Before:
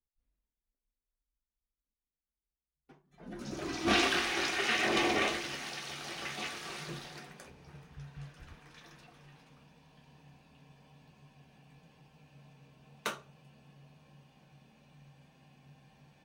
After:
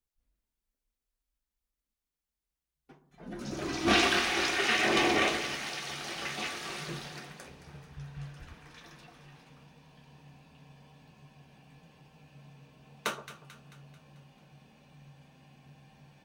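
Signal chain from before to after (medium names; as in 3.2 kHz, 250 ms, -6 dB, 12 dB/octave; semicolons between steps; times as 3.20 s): two-band feedback delay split 1.2 kHz, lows 120 ms, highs 220 ms, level -13.5 dB; trim +3 dB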